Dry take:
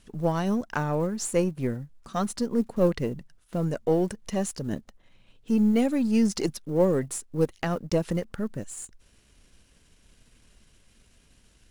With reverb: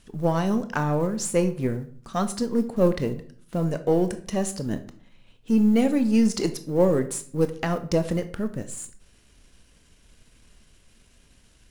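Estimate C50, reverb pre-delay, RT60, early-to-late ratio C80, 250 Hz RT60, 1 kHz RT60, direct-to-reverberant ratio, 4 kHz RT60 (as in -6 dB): 13.5 dB, 19 ms, 0.50 s, 17.5 dB, 0.70 s, 0.50 s, 9.0 dB, 0.35 s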